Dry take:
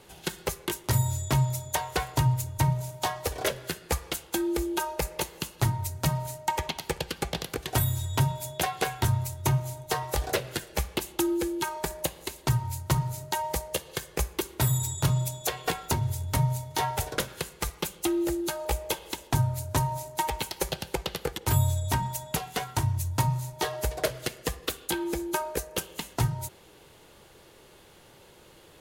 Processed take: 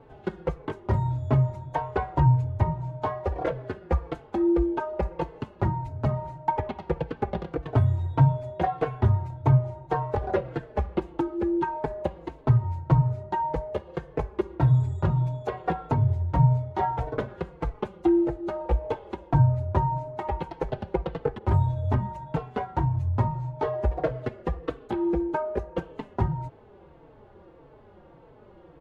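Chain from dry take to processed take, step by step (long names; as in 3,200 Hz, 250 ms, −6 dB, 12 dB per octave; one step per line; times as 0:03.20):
low-pass filter 1,000 Hz 12 dB per octave
barber-pole flanger 4 ms −1.7 Hz
level +7.5 dB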